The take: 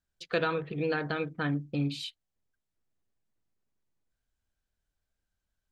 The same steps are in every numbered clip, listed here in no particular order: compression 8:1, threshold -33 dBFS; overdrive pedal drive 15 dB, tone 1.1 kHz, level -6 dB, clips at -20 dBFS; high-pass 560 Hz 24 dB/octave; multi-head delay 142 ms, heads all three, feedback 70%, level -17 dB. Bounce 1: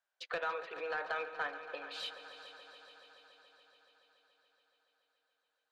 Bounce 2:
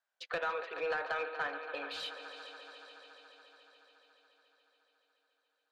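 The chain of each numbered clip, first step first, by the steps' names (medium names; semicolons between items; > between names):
compression > high-pass > overdrive pedal > multi-head delay; high-pass > compression > multi-head delay > overdrive pedal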